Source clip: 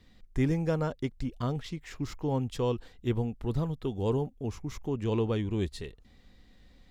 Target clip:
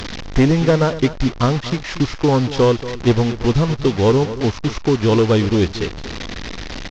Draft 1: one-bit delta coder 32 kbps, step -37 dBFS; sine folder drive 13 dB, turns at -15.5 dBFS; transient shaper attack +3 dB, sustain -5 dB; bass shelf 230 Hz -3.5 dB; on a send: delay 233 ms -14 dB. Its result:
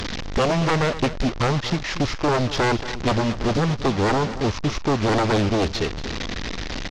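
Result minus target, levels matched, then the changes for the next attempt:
sine folder: distortion +18 dB
change: sine folder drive 13 dB, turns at -7 dBFS

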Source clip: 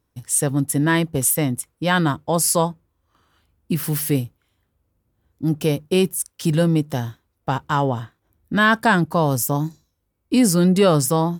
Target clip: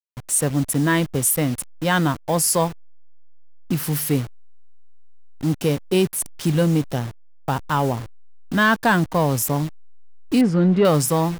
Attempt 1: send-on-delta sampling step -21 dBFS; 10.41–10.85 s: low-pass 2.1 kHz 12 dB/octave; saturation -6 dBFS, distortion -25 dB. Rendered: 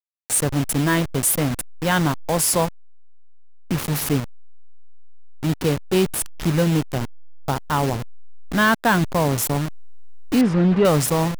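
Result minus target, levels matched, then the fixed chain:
send-on-delta sampling: distortion +8 dB
send-on-delta sampling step -29.5 dBFS; 10.41–10.85 s: low-pass 2.1 kHz 12 dB/octave; saturation -6 dBFS, distortion -25 dB

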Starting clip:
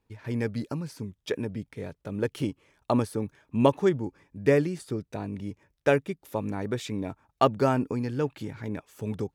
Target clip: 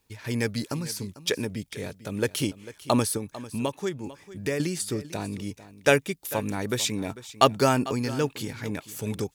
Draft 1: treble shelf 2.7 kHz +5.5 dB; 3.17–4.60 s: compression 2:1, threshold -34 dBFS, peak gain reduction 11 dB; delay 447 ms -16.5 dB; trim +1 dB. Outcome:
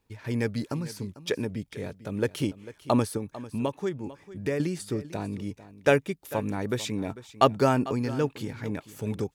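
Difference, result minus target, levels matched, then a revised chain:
4 kHz band -5.5 dB
treble shelf 2.7 kHz +16.5 dB; 3.17–4.60 s: compression 2:1, threshold -34 dBFS, peak gain reduction 11.5 dB; delay 447 ms -16.5 dB; trim +1 dB

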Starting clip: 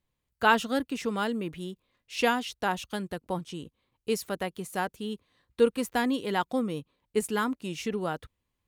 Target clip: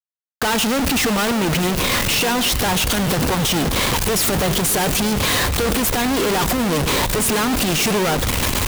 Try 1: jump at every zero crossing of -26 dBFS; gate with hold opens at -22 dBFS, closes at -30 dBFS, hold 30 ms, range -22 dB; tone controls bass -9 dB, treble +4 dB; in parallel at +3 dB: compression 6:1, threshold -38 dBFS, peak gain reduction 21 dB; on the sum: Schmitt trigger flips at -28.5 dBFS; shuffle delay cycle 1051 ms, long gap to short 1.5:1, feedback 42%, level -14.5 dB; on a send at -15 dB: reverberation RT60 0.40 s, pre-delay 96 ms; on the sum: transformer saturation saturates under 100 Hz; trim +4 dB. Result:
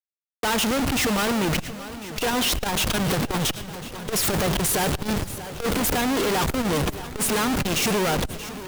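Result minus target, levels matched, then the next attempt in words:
compression: peak gain reduction -9 dB; jump at every zero crossing: distortion -5 dB
jump at every zero crossing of -18 dBFS; gate with hold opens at -22 dBFS, closes at -30 dBFS, hold 30 ms, range -22 dB; tone controls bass -9 dB, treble +4 dB; in parallel at +3 dB: compression 6:1, threshold -47.5 dBFS, peak gain reduction 30 dB; on the sum: Schmitt trigger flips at -28.5 dBFS; shuffle delay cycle 1051 ms, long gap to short 1.5:1, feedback 42%, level -14.5 dB; on a send at -15 dB: reverberation RT60 0.40 s, pre-delay 96 ms; on the sum: transformer saturation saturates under 100 Hz; trim +4 dB

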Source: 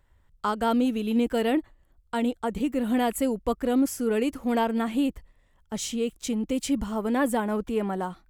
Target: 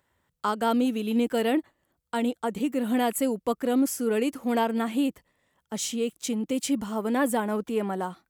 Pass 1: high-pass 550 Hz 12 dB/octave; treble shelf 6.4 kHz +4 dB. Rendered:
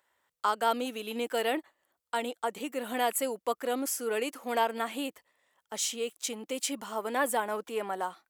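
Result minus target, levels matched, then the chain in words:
125 Hz band -10.5 dB
high-pass 160 Hz 12 dB/octave; treble shelf 6.4 kHz +4 dB

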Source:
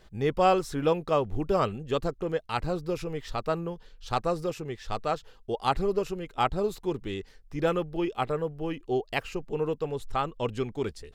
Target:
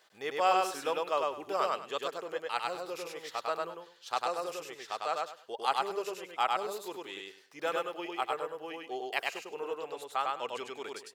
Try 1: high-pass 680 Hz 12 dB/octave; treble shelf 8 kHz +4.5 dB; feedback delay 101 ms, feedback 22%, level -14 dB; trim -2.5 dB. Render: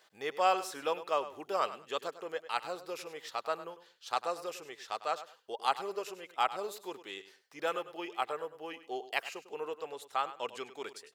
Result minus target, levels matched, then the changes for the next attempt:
echo-to-direct -12 dB
change: feedback delay 101 ms, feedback 22%, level -2 dB

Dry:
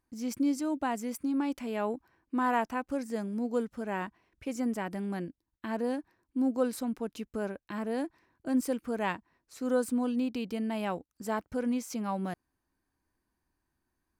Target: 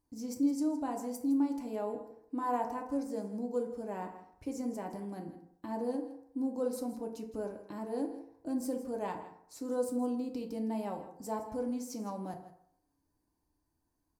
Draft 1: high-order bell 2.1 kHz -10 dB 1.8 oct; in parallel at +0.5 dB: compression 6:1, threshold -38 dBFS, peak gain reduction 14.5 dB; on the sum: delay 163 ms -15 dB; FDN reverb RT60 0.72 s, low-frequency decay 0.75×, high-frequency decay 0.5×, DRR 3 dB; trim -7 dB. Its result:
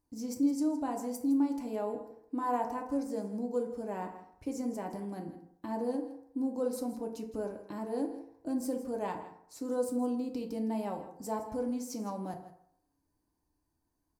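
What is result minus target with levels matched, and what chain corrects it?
compression: peak gain reduction -6.5 dB
high-order bell 2.1 kHz -10 dB 1.8 oct; in parallel at +0.5 dB: compression 6:1, threshold -46 dBFS, peak gain reduction 21 dB; on the sum: delay 163 ms -15 dB; FDN reverb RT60 0.72 s, low-frequency decay 0.75×, high-frequency decay 0.5×, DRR 3 dB; trim -7 dB

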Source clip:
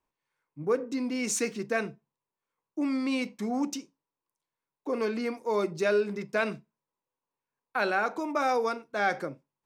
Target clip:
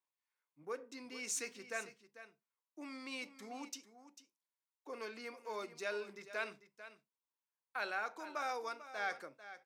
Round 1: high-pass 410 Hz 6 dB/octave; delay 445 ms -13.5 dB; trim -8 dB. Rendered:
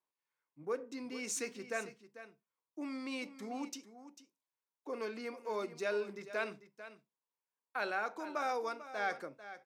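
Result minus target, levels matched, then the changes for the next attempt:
500 Hz band +2.5 dB
change: high-pass 1.2 kHz 6 dB/octave

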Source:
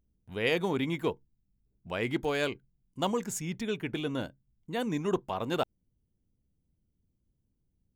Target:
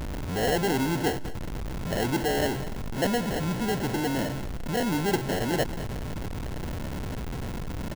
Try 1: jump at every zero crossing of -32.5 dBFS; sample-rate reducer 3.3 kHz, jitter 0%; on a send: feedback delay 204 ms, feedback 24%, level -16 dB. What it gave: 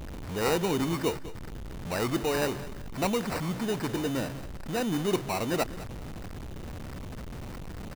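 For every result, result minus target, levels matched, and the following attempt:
sample-rate reducer: distortion -6 dB; jump at every zero crossing: distortion -4 dB
jump at every zero crossing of -32.5 dBFS; sample-rate reducer 1.2 kHz, jitter 0%; on a send: feedback delay 204 ms, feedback 24%, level -16 dB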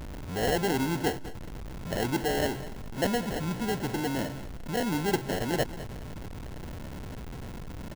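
jump at every zero crossing: distortion -4 dB
jump at every zero crossing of -26 dBFS; sample-rate reducer 1.2 kHz, jitter 0%; on a send: feedback delay 204 ms, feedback 24%, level -16 dB

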